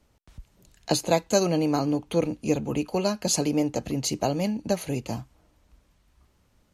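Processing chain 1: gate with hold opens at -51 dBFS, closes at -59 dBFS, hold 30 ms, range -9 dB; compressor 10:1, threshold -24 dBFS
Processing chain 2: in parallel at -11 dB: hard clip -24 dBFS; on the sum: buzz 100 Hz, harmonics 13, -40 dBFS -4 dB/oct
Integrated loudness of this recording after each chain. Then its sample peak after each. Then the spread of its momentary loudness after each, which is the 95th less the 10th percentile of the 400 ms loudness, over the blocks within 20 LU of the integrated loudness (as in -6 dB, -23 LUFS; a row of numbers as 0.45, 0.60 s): -30.5, -24.5 LUFS; -12.0, -7.5 dBFS; 5, 19 LU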